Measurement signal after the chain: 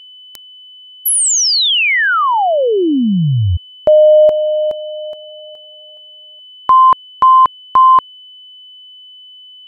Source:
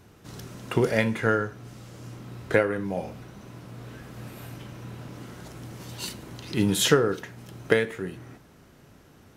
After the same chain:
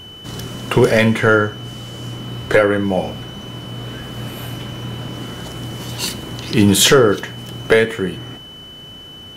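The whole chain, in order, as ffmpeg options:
-af "apsyclip=5.96,aeval=exprs='val(0)+0.0251*sin(2*PI*3000*n/s)':c=same,volume=0.668"

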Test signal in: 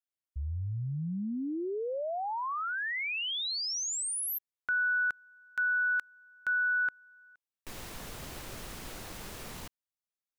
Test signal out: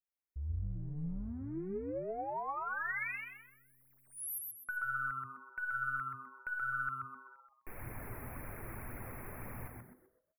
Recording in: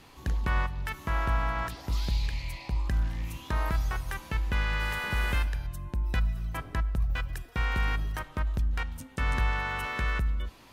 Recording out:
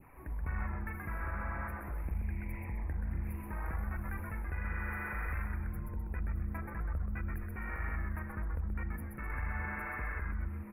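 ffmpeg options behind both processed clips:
-filter_complex "[0:a]adynamicequalizer=threshold=0.00891:dfrequency=1700:dqfactor=2.3:tfrequency=1700:tqfactor=2.3:attack=5:release=100:ratio=0.375:range=2.5:mode=boostabove:tftype=bell,acompressor=threshold=0.0158:ratio=2.5:attack=1.3:release=22:knee=1,aeval=exprs='clip(val(0),-1,0.0188)':c=same,flanger=delay=0.2:depth=3.1:regen=42:speed=1.9:shape=triangular,asuperstop=centerf=5300:order=20:qfactor=0.68,asplit=6[s0][s1][s2][s3][s4][s5];[s1]adelay=128,afreqshift=-130,volume=0.708[s6];[s2]adelay=256,afreqshift=-260,volume=0.254[s7];[s3]adelay=384,afreqshift=-390,volume=0.0923[s8];[s4]adelay=512,afreqshift=-520,volume=0.0331[s9];[s5]adelay=640,afreqshift=-650,volume=0.0119[s10];[s0][s6][s7][s8][s9][s10]amix=inputs=6:normalize=0"

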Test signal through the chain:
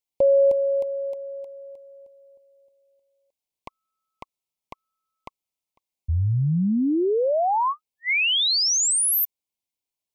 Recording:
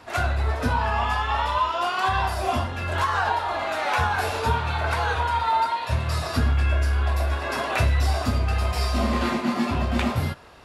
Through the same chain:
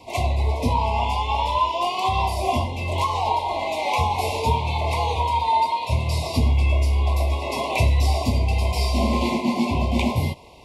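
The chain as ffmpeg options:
-af "asuperstop=centerf=1500:order=20:qfactor=1.6,volume=1.33"

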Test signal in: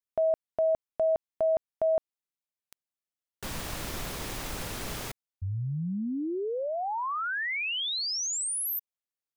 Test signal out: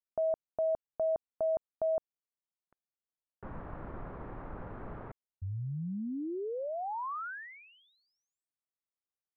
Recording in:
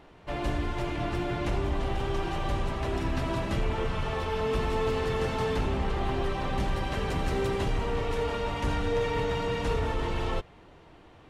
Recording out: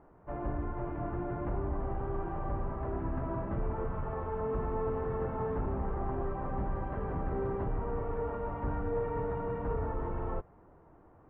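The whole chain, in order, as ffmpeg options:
-af "lowpass=f=1400:w=0.5412,lowpass=f=1400:w=1.3066,volume=0.562"

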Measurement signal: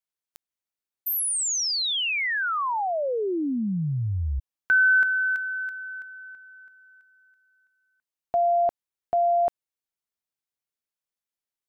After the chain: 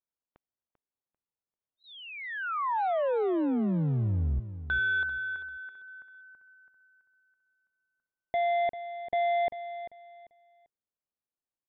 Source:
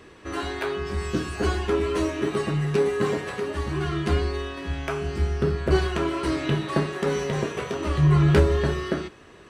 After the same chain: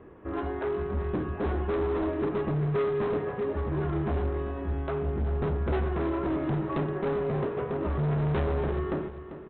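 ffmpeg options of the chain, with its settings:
-af "lowpass=1000,aresample=8000,asoftclip=type=hard:threshold=0.0531,aresample=44100,aecho=1:1:393|786|1179:0.251|0.0628|0.0157"

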